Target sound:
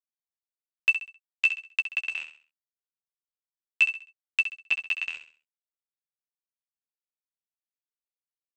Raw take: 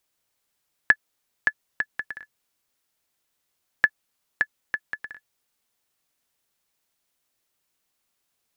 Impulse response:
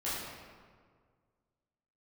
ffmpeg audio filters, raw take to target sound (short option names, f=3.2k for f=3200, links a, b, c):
-filter_complex "[0:a]highpass=f=520:p=1,bandreject=f=3.4k:w=15,agate=range=-57dB:threshold=-48dB:ratio=16:detection=peak,highshelf=f=5.3k:g=6.5,asoftclip=type=tanh:threshold=-14dB,asetrate=68011,aresample=44100,atempo=0.64842,asplit=2[a][b];[b]highpass=f=720:p=1,volume=10dB,asoftclip=type=tanh:threshold=-13.5dB[c];[a][c]amix=inputs=2:normalize=0,lowpass=f=3k:p=1,volume=-6dB,aeval=exprs='val(0)*gte(abs(val(0)),0.0126)':c=same,asplit=2[d][e];[e]adelay=12,volume=-6.5dB[f];[d][f]amix=inputs=2:normalize=0,asplit=2[g][h];[h]aecho=0:1:66|132|198|264:0.316|0.108|0.0366|0.0124[i];[g][i]amix=inputs=2:normalize=0,aresample=16000,aresample=44100,volume=2.5dB"